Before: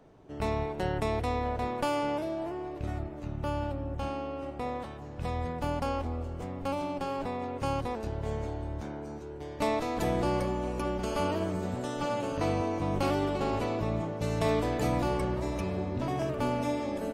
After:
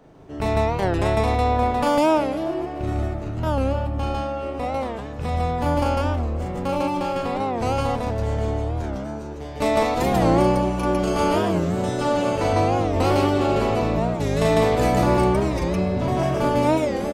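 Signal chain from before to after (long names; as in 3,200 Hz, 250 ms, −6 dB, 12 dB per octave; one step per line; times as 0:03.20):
loudspeakers that aren't time-aligned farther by 13 metres −3 dB, 52 metres 0 dB
wow of a warped record 45 rpm, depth 160 cents
level +5.5 dB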